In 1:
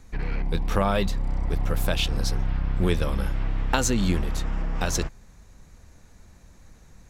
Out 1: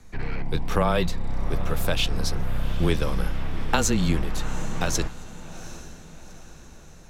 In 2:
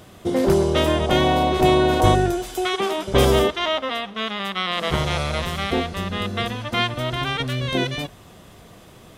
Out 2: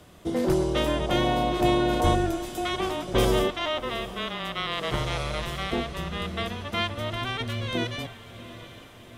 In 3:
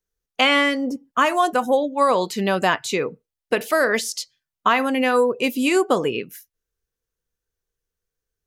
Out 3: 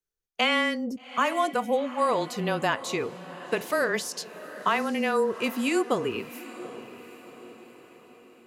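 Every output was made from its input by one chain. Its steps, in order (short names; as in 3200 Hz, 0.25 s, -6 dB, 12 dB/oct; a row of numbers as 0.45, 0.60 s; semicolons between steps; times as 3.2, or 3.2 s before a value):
diffused feedback echo 0.781 s, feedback 49%, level -15 dB; frequency shift -18 Hz; match loudness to -27 LUFS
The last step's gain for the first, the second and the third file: +1.0, -6.0, -6.5 dB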